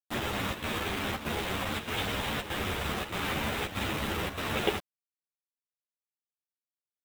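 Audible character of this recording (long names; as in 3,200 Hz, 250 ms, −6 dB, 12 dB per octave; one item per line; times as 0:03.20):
a quantiser's noise floor 6 bits, dither none
chopped level 1.6 Hz, depth 65%, duty 85%
a shimmering, thickened sound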